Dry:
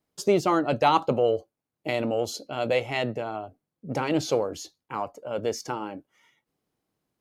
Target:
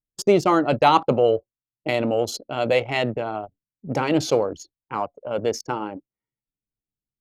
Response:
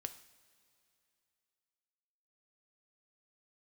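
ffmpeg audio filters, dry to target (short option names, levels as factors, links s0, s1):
-af "anlmdn=2.51,volume=1.68"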